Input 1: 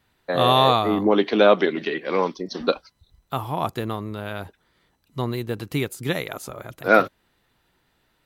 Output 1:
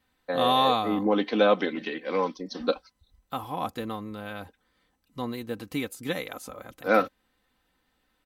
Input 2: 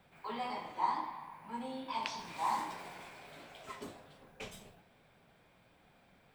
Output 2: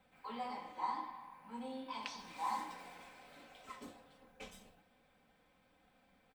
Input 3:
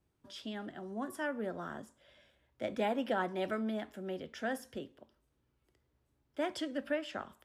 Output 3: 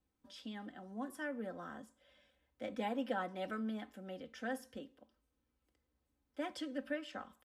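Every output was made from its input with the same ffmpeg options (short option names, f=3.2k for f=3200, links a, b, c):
-af "aecho=1:1:3.9:0.6,volume=-6.5dB"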